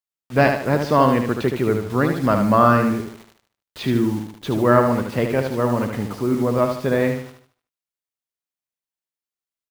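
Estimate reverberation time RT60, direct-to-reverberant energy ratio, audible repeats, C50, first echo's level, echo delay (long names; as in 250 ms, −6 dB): no reverb audible, no reverb audible, 4, no reverb audible, −6.0 dB, 75 ms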